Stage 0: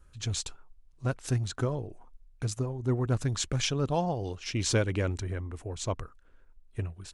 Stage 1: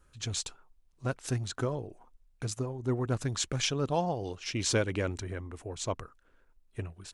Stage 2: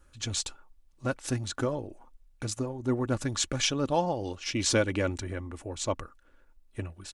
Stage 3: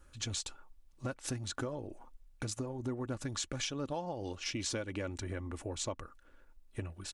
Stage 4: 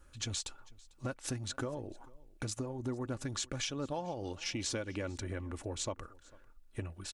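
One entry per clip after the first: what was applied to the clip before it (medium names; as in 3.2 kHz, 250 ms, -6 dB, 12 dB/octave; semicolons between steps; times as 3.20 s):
bass shelf 110 Hz -9 dB
comb 3.5 ms, depth 40%; trim +2.5 dB
compression 6:1, threshold -35 dBFS, peak gain reduction 14.5 dB
delay 447 ms -24 dB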